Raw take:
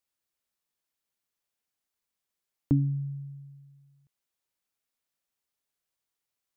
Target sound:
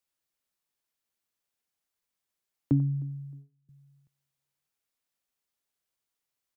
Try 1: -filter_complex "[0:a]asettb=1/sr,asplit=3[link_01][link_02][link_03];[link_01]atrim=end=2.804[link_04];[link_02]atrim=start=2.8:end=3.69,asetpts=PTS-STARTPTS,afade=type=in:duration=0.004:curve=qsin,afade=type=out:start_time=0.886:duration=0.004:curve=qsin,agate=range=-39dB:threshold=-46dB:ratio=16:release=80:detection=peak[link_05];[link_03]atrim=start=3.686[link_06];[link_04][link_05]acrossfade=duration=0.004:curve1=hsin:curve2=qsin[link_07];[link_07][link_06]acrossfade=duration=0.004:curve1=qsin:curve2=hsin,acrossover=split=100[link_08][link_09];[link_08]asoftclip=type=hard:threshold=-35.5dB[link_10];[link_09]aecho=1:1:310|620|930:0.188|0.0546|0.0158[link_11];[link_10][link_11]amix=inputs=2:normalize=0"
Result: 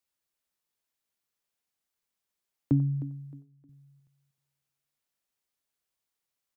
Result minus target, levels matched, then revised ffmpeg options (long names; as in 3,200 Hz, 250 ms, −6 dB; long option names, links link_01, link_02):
echo-to-direct +8.5 dB
-filter_complex "[0:a]asettb=1/sr,asplit=3[link_01][link_02][link_03];[link_01]atrim=end=2.804[link_04];[link_02]atrim=start=2.8:end=3.69,asetpts=PTS-STARTPTS,afade=type=in:duration=0.004:curve=qsin,afade=type=out:start_time=0.886:duration=0.004:curve=qsin,agate=range=-39dB:threshold=-46dB:ratio=16:release=80:detection=peak[link_05];[link_03]atrim=start=3.686[link_06];[link_04][link_05]acrossfade=duration=0.004:curve1=hsin:curve2=qsin[link_07];[link_07][link_06]acrossfade=duration=0.004:curve1=qsin:curve2=hsin,acrossover=split=100[link_08][link_09];[link_08]asoftclip=type=hard:threshold=-35.5dB[link_10];[link_09]aecho=1:1:310|620:0.0596|0.0173[link_11];[link_10][link_11]amix=inputs=2:normalize=0"